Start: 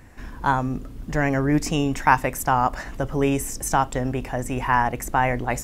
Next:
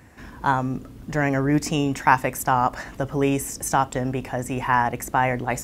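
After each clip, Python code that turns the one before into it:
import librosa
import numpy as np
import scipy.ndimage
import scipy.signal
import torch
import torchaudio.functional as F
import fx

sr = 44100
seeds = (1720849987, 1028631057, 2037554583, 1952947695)

y = scipy.signal.sosfilt(scipy.signal.butter(2, 72.0, 'highpass', fs=sr, output='sos'), x)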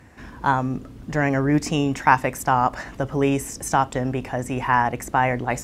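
y = fx.high_shelf(x, sr, hz=12000.0, db=-12.0)
y = y * librosa.db_to_amplitude(1.0)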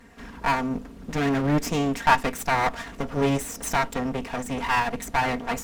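y = fx.lower_of_two(x, sr, delay_ms=4.3)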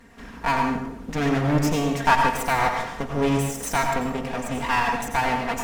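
y = fx.rev_plate(x, sr, seeds[0], rt60_s=0.79, hf_ratio=0.75, predelay_ms=75, drr_db=3.0)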